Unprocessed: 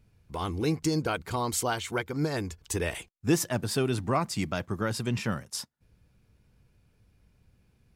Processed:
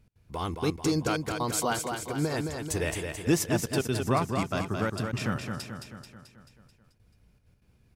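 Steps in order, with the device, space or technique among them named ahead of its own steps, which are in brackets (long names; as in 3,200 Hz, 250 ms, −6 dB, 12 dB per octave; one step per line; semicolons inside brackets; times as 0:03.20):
trance gate with a delay (gate pattern "x.xxxxx." 193 BPM −24 dB; repeating echo 218 ms, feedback 56%, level −5.5 dB)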